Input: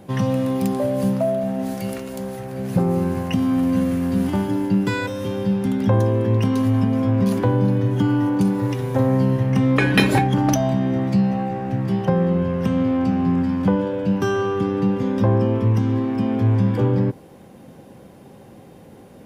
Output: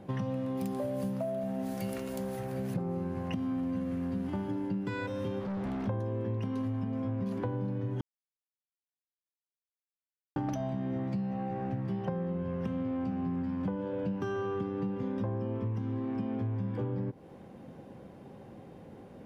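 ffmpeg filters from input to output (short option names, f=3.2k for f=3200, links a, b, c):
-filter_complex "[0:a]asettb=1/sr,asplit=3[a][b][c];[a]atrim=end=0.574[d];[b]atrim=start=0.57:end=2.74,asetpts=PTS-STARTPTS,afade=t=in:d=0.004:c=qsin,afade=t=out:st=2.166:d=0.004:c=qsin,aemphasis=mode=production:type=50kf[e];[c]atrim=start=2.736[f];[d][e]acrossfade=d=0.004:c1=hsin:c2=qsin[g];[g][f]acrossfade=d=0.004:c1=qsin:c2=hsin,asplit=3[h][i][j];[h]afade=t=out:st=5.39:d=0.02[k];[i]volume=27.5dB,asoftclip=hard,volume=-27.5dB,afade=t=in:st=5.39:d=0.02,afade=t=out:st=5.87:d=0.02[l];[j]afade=t=in:st=5.87:d=0.02[m];[k][l][m]amix=inputs=3:normalize=0,asplit=3[n][o][p];[n]atrim=end=8.01,asetpts=PTS-STARTPTS,afade=t=out:st=8.006:d=0.004:c=hsin[q];[o]atrim=start=8.01:end=10.36,asetpts=PTS-STARTPTS,volume=0[r];[p]atrim=start=10.36,asetpts=PTS-STARTPTS,afade=t=in:d=0.004:c=hsin[s];[q][r][s]concat=n=3:v=0:a=1,lowpass=f=2.4k:p=1,acompressor=threshold=-26dB:ratio=6,volume=-5dB"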